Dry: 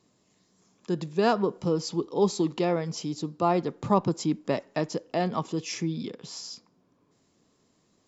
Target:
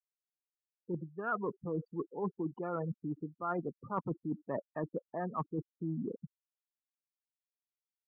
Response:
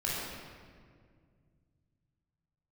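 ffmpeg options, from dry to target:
-af "adynamicsmooth=sensitivity=4:basefreq=1000,afftfilt=real='re*gte(hypot(re,im),0.0398)':imag='im*gte(hypot(re,im),0.0398)':win_size=1024:overlap=0.75,lowpass=f=1400:t=q:w=13,areverse,acompressor=threshold=0.02:ratio=6,areverse"

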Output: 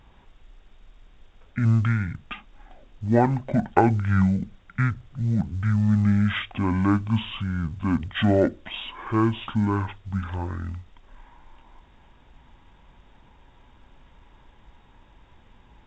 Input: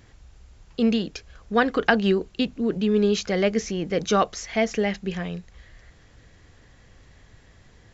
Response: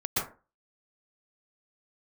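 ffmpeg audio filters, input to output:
-af "asetrate=22050,aresample=44100" -ar 16000 -c:a pcm_mulaw

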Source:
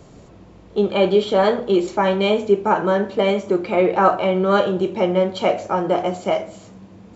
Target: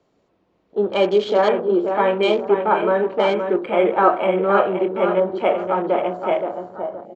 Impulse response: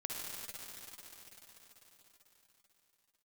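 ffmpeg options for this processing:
-filter_complex "[0:a]acrossover=split=240 6000:gain=0.224 1 0.0708[s0][s1][s2];[s0][s1][s2]amix=inputs=3:normalize=0,asplit=2[s3][s4];[s4]adelay=522,lowpass=f=3500:p=1,volume=0.473,asplit=2[s5][s6];[s6]adelay=522,lowpass=f=3500:p=1,volume=0.33,asplit=2[s7][s8];[s8]adelay=522,lowpass=f=3500:p=1,volume=0.33,asplit=2[s9][s10];[s10]adelay=522,lowpass=f=3500:p=1,volume=0.33[s11];[s3][s5][s7][s9][s11]amix=inputs=5:normalize=0,afwtdn=0.02"

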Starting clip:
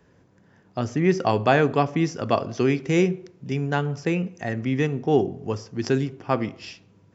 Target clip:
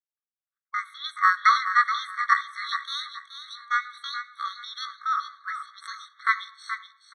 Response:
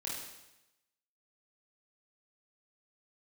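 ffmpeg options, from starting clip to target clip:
-filter_complex "[0:a]agate=range=0.00355:threshold=0.00282:ratio=16:detection=peak,asetrate=74167,aresample=44100,atempo=0.594604,highpass=580,lowpass=3400,asplit=2[s0][s1];[s1]aecho=0:1:426|852|1278:0.335|0.0938|0.0263[s2];[s0][s2]amix=inputs=2:normalize=0,afftfilt=real='re*eq(mod(floor(b*sr/1024/1100),2),1)':imag='im*eq(mod(floor(b*sr/1024/1100),2),1)':win_size=1024:overlap=0.75,volume=1.78"

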